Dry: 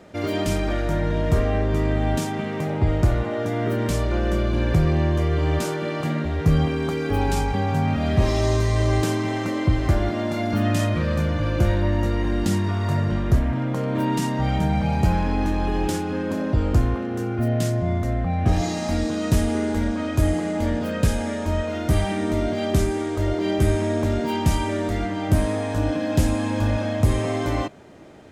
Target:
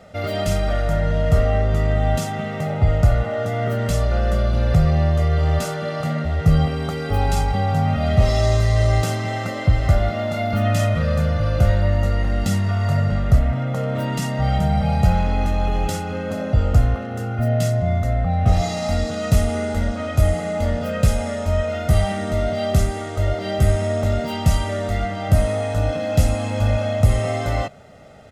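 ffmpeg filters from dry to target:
ffmpeg -i in.wav -af "aecho=1:1:1.5:0.77" out.wav

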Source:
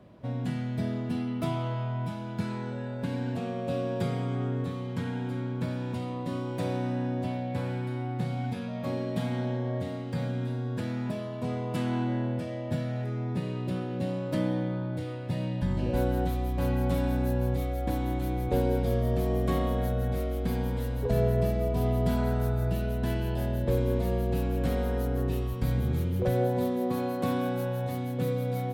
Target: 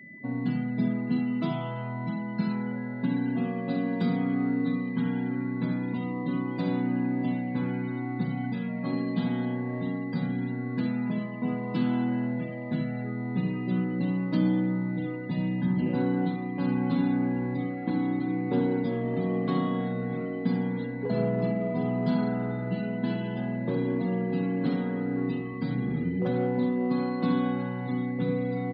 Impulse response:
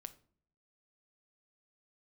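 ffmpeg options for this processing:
-filter_complex "[0:a]aeval=exprs='val(0)+0.0112*sin(2*PI*2000*n/s)':channel_layout=same,asettb=1/sr,asplit=3[link_01][link_02][link_03];[link_01]atrim=end=3.694[link_04];[link_02]atrim=start=3.69:end=4.96,asetpts=PTS-STARTPTS,afade=type=in:duration=0.004:curve=qsin,afade=type=out:start_time=1.266:duration=0.004:curve=qsin,aecho=1:1:4.1:0.45,atrim=end_sample=56007[link_05];[link_03]atrim=start=4.956[link_06];[link_04][link_05]acrossfade=duration=0.004:curve1=hsin:curve2=qsin[link_07];[link_07][link_06]acrossfade=duration=0.004:curve1=qsin:curve2=hsin,afftfilt=real='re*gte(hypot(re,im),0.00708)':imag='im*gte(hypot(re,im),0.00708)':win_size=1024:overlap=0.75,asplit=2[link_08][link_09];[link_09]asoftclip=type=tanh:threshold=-24.5dB,volume=-6dB[link_10];[link_08][link_10]amix=inputs=2:normalize=0,highpass=frequency=150:width=0.5412,highpass=frequency=150:width=1.3066,equalizer=frequency=180:width_type=q:width=4:gain=4,equalizer=frequency=260:width_type=q:width=4:gain=7,equalizer=frequency=580:width_type=q:width=4:gain=-9,equalizer=frequency=2000:width_type=q:width=4:gain=-9,equalizer=frequency=4300:width_type=q:width=4:gain=6,lowpass=frequency=5000:width=0.5412,lowpass=frequency=5000:width=1.3066,asplit=2[link_11][link_12];[link_12]adelay=71,lowpass=frequency=890:poles=1,volume=-5dB,asplit=2[link_13][link_14];[link_14]adelay=71,lowpass=frequency=890:poles=1,volume=0.19,asplit=2[link_15][link_16];[link_16]adelay=71,lowpass=frequency=890:poles=1,volume=0.19[link_17];[link_13][link_15][link_17]amix=inputs=3:normalize=0[link_18];[link_11][link_18]amix=inputs=2:normalize=0,volume=-2dB"

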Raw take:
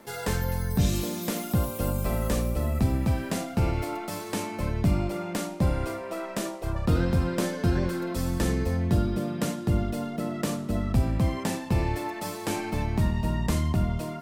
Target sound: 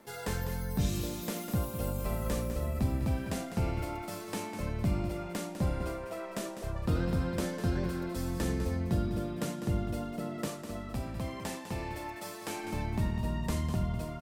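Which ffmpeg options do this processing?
ffmpeg -i in.wav -filter_complex "[0:a]asettb=1/sr,asplit=3[link_01][link_02][link_03];[link_01]atrim=end=10.484[link_04];[link_02]atrim=start=10.48:end=12.64,asetpts=PTS-STARTPTS,afade=type=in:duration=0.004:curve=qsin,afade=type=out:start_time=2.156:duration=0.004:curve=qsin,lowshelf=frequency=310:gain=-8.5[link_05];[link_03]atrim=start=12.636[link_06];[link_04][link_05]acrossfade=duration=0.004:curve1=hsin:curve2=qsin[link_07];[link_07][link_06]acrossfade=duration=0.004:curve1=qsin:curve2=hsin,aecho=1:1:201:0.335,volume=-6.5dB" out.wav

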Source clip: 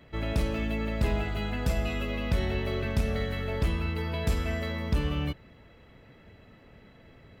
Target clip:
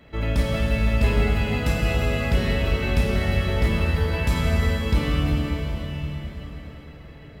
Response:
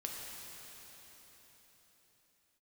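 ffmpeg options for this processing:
-filter_complex "[1:a]atrim=start_sample=2205,asetrate=43218,aresample=44100[link_01];[0:a][link_01]afir=irnorm=-1:irlink=0,volume=7dB"

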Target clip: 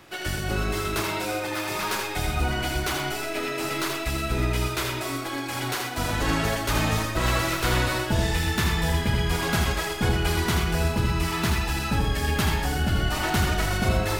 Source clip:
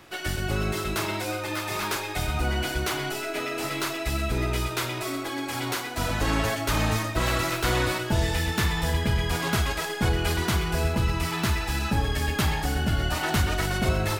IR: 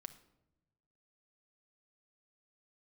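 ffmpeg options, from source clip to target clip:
-filter_complex "[0:a]asplit=2[link_01][link_02];[1:a]atrim=start_sample=2205,adelay=80[link_03];[link_02][link_03]afir=irnorm=-1:irlink=0,volume=1dB[link_04];[link_01][link_04]amix=inputs=2:normalize=0"

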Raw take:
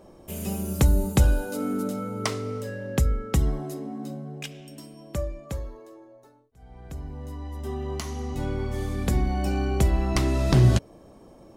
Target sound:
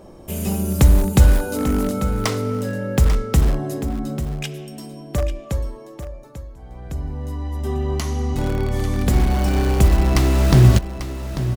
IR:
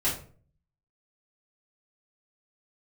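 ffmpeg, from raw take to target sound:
-filter_complex "[0:a]asplit=2[link_01][link_02];[link_02]aeval=exprs='(mod(11.2*val(0)+1,2)-1)/11.2':channel_layout=same,volume=-10dB[link_03];[link_01][link_03]amix=inputs=2:normalize=0,lowshelf=frequency=140:gain=4,aecho=1:1:843:0.266,volume=4dB"

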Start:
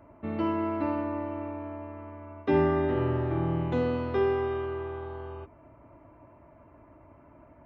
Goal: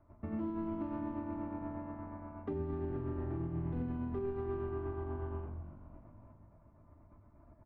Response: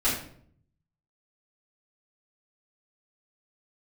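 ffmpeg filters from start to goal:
-filter_complex "[0:a]acrossover=split=560[link_01][link_02];[link_02]asoftclip=type=tanh:threshold=-39.5dB[link_03];[link_01][link_03]amix=inputs=2:normalize=0,agate=range=-9dB:threshold=-52dB:ratio=16:detection=peak,asplit=2[link_04][link_05];[1:a]atrim=start_sample=2205,asetrate=40131,aresample=44100,lowpass=2700[link_06];[link_05][link_06]afir=irnorm=-1:irlink=0,volume=-13dB[link_07];[link_04][link_07]amix=inputs=2:normalize=0,tremolo=f=8.4:d=0.41,lowpass=1100,equalizer=frequency=460:width=0.38:gain=-13.5,asplit=7[link_08][link_09][link_10][link_11][link_12][link_13][link_14];[link_09]adelay=292,afreqshift=-47,volume=-17dB[link_15];[link_10]adelay=584,afreqshift=-94,volume=-21.2dB[link_16];[link_11]adelay=876,afreqshift=-141,volume=-25.3dB[link_17];[link_12]adelay=1168,afreqshift=-188,volume=-29.5dB[link_18];[link_13]adelay=1460,afreqshift=-235,volume=-33.6dB[link_19];[link_14]adelay=1752,afreqshift=-282,volume=-37.8dB[link_20];[link_08][link_15][link_16][link_17][link_18][link_19][link_20]amix=inputs=7:normalize=0,alimiter=level_in=12dB:limit=-24dB:level=0:latency=1:release=305,volume=-12dB,volume=6.5dB"

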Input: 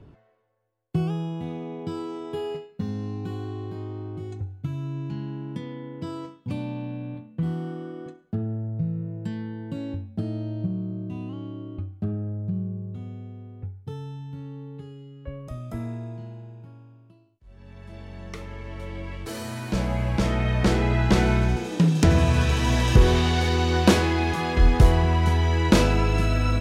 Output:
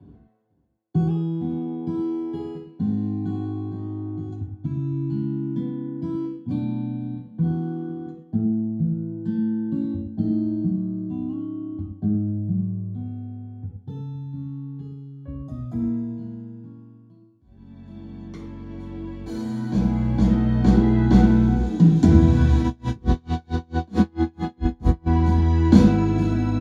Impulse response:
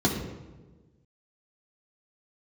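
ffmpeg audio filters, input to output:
-filter_complex "[0:a]aecho=1:1:3.9:0.31,aecho=1:1:498:0.106[link_01];[1:a]atrim=start_sample=2205,atrim=end_sample=6174[link_02];[link_01][link_02]afir=irnorm=-1:irlink=0,asplit=3[link_03][link_04][link_05];[link_03]afade=type=out:start_time=22.62:duration=0.02[link_06];[link_04]aeval=exprs='val(0)*pow(10,-37*(0.5-0.5*cos(2*PI*4.5*n/s))/20)':channel_layout=same,afade=type=in:start_time=22.62:duration=0.02,afade=type=out:start_time=25.06:duration=0.02[link_07];[link_05]afade=type=in:start_time=25.06:duration=0.02[link_08];[link_06][link_07][link_08]amix=inputs=3:normalize=0,volume=-18dB"

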